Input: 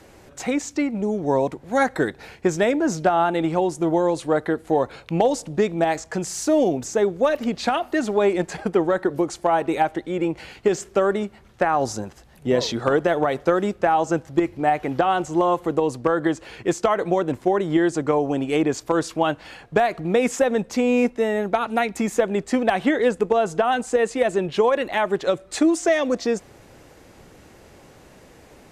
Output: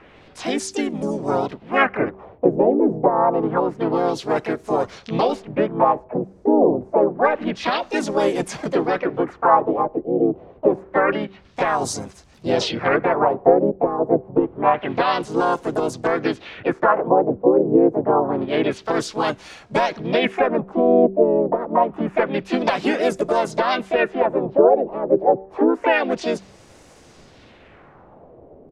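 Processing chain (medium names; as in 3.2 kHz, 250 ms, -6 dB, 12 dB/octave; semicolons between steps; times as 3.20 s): LFO low-pass sine 0.27 Hz 430–6700 Hz; harmony voices -4 st -6 dB, +5 st -3 dB, +7 st -11 dB; de-hum 192.5 Hz, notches 2; trim -3 dB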